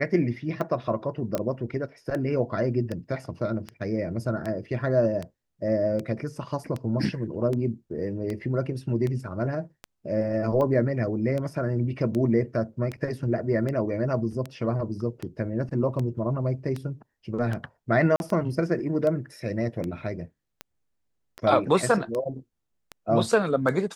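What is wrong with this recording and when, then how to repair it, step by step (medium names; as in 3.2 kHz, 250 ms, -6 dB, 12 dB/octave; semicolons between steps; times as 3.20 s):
tick 78 rpm -19 dBFS
1.35 s: pop -13 dBFS
18.16–18.20 s: dropout 41 ms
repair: de-click; interpolate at 18.16 s, 41 ms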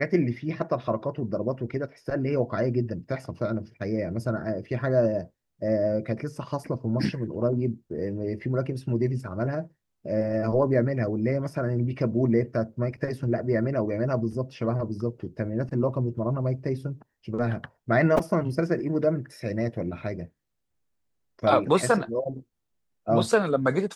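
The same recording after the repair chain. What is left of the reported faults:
nothing left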